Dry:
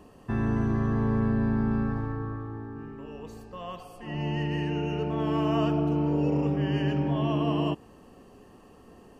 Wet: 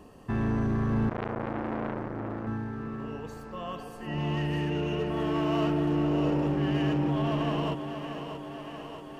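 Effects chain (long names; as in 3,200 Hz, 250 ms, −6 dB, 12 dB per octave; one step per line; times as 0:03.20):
in parallel at −8 dB: wave folding −27.5 dBFS
on the sum: feedback echo with a high-pass in the loop 633 ms, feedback 71%, high-pass 180 Hz, level −7.5 dB
0:01.09–0:02.47: saturating transformer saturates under 1,200 Hz
level −2 dB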